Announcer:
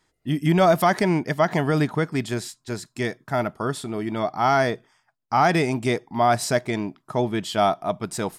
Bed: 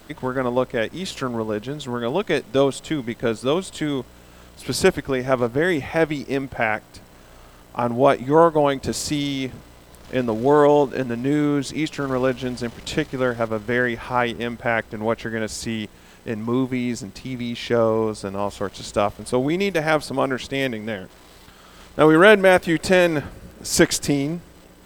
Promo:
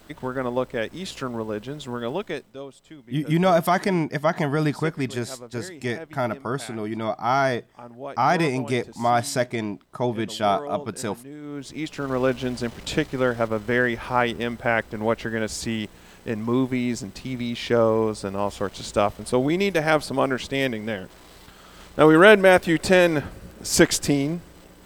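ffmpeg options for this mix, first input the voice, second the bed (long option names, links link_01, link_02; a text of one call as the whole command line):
ffmpeg -i stem1.wav -i stem2.wav -filter_complex "[0:a]adelay=2850,volume=-1.5dB[link_01];[1:a]volume=15dB,afade=type=out:start_time=2.07:duration=0.48:silence=0.16788,afade=type=in:start_time=11.41:duration=0.92:silence=0.112202[link_02];[link_01][link_02]amix=inputs=2:normalize=0" out.wav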